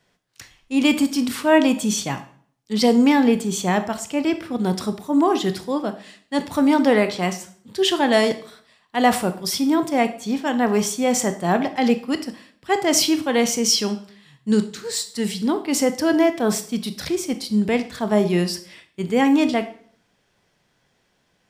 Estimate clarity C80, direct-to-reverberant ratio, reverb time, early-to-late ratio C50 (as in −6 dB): 17.0 dB, 9.0 dB, 0.55 s, 13.0 dB